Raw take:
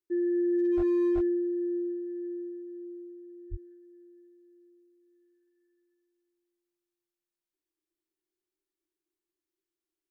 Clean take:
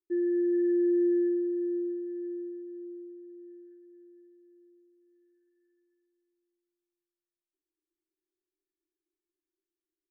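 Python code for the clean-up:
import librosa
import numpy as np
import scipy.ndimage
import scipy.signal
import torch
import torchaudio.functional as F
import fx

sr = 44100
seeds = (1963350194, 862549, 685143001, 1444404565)

y = fx.fix_declip(x, sr, threshold_db=-22.5)
y = fx.fix_deplosive(y, sr, at_s=(0.76, 1.14, 3.5))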